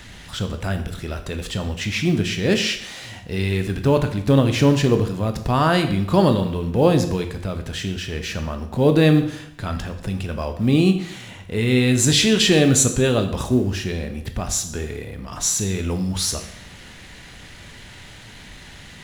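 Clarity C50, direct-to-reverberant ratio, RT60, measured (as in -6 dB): 10.0 dB, 6.5 dB, 0.75 s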